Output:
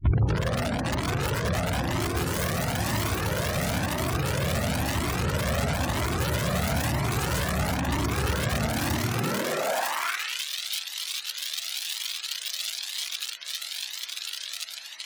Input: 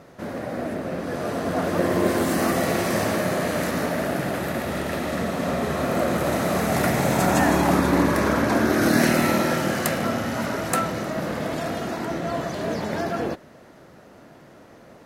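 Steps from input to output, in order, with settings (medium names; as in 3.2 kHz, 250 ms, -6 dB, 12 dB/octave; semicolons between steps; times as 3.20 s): tape start-up on the opening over 0.52 s; echo that smears into a reverb 1128 ms, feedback 74%, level -10 dB; compression 16:1, threshold -29 dBFS, peak gain reduction 16.5 dB; integer overflow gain 26.5 dB; peaking EQ 120 Hz +9 dB 1.1 oct; spectral gate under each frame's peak -30 dB strong; high-pass sweep 63 Hz -> 3.6 kHz, 8.86–10.44 s; Shepard-style flanger rising 1 Hz; trim +8.5 dB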